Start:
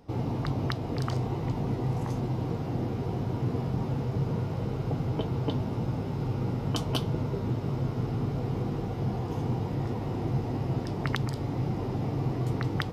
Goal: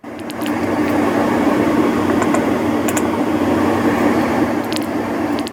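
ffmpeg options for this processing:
-af "dynaudnorm=f=600:g=3:m=6.68,asetrate=103194,aresample=44100"

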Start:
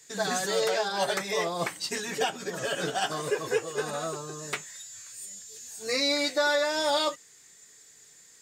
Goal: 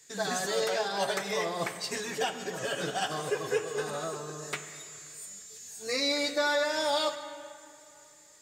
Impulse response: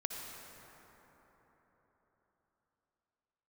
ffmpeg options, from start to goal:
-filter_complex "[0:a]asplit=2[s0][s1];[1:a]atrim=start_sample=2205,asetrate=74970,aresample=44100,lowshelf=f=62:g=11[s2];[s1][s2]afir=irnorm=-1:irlink=0,volume=0.944[s3];[s0][s3]amix=inputs=2:normalize=0,volume=0.501"

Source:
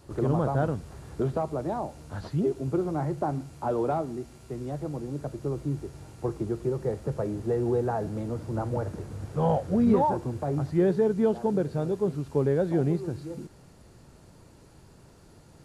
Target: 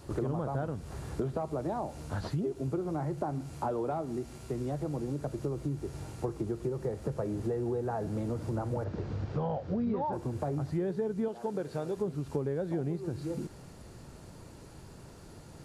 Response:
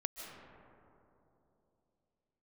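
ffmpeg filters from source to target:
-filter_complex "[0:a]asettb=1/sr,asplit=3[s0][s1][s2];[s0]atrim=end=8.844[s3];[s1]atrim=start=8.84:end=10.13,asetpts=PTS-STARTPTS,afade=t=in:d=0.004:c=qsin,afade=t=out:st=1.286:d=0.004:c=qsin,lowpass=f=5200:w=0.5412,lowpass=f=5200:w=1.3066[s4];[s2]atrim=start=10.126[s5];[s3][s4]acrossfade=d=0.004:c1=hsin:c2=qsin[s6];[s6][s5]acrossfade=d=0.004:c1=qsin:c2=hsin,asettb=1/sr,asplit=3[s7][s8][s9];[s7]atrim=end=11.284[s10];[s8]atrim=start=11.28:end=11.97,asetpts=PTS-STARTPTS,afade=t=in:d=0.004:c=qsin,afade=t=out:st=0.686:d=0.004:c=qsin,lowshelf=f=290:g=-12[s11];[s9]atrim=start=11.966[s12];[s10][s11]acrossfade=d=0.004:c1=hsin:c2=qsin[s13];[s13][s12]acrossfade=d=0.004:c1=qsin:c2=hsin,acompressor=threshold=0.02:ratio=5,volume=1.5"

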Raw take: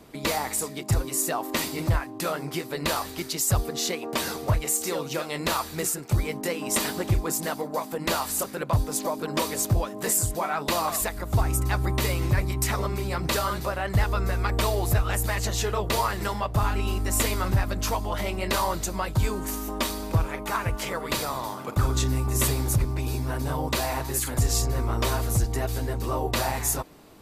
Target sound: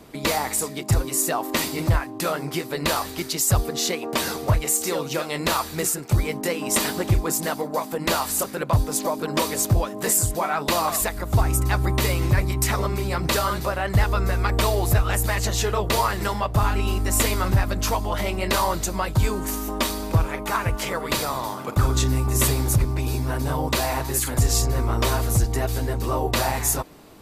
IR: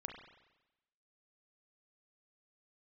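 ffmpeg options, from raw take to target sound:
-af "volume=1.5"

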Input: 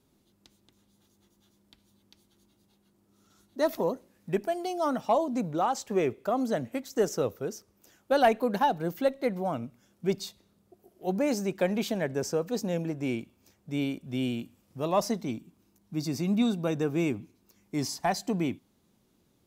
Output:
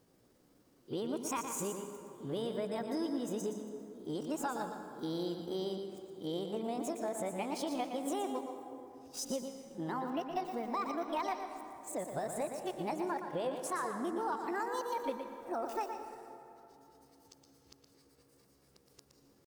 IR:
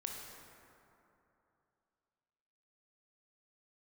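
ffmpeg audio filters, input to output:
-filter_complex "[0:a]areverse,asetrate=60591,aresample=44100,atempo=0.727827,acompressor=threshold=0.0178:ratio=6,asplit=2[s0][s1];[1:a]atrim=start_sample=2205,adelay=118[s2];[s1][s2]afir=irnorm=-1:irlink=0,volume=0.631[s3];[s0][s3]amix=inputs=2:normalize=0"

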